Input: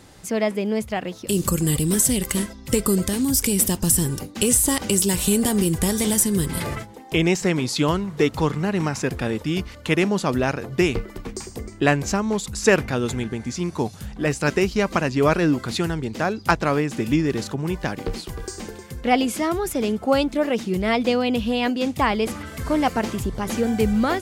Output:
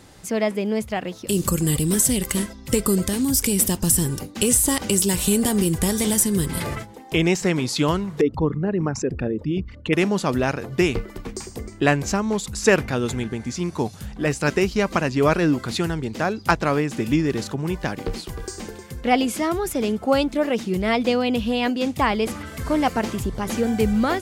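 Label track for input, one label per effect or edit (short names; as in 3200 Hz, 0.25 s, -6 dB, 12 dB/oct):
8.210000	9.930000	formant sharpening exponent 2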